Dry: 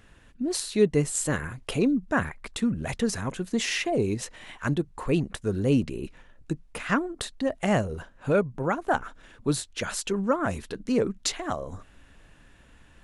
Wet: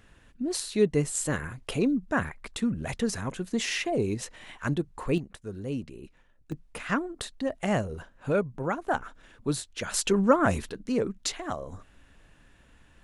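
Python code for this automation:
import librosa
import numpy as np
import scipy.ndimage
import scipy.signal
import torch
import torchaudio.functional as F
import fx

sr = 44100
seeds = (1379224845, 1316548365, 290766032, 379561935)

y = fx.gain(x, sr, db=fx.steps((0.0, -2.0), (5.18, -10.5), (6.52, -3.0), (9.94, 4.0), (10.69, -3.0)))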